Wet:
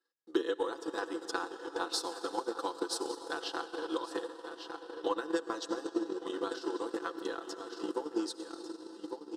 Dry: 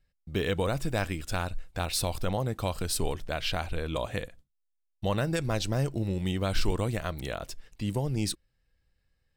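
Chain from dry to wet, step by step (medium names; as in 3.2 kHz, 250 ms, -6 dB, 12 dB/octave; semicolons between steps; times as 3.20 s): low-pass 5.6 kHz 12 dB/octave; comb 6 ms; delay 1151 ms -11.5 dB; compression 2:1, threshold -31 dBFS, peak gain reduction 8.5 dB; steep high-pass 290 Hz 36 dB/octave; static phaser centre 620 Hz, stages 6; on a send at -5.5 dB: reverberation RT60 5.8 s, pre-delay 61 ms; on the sum: transient shaper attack +9 dB, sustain -7 dB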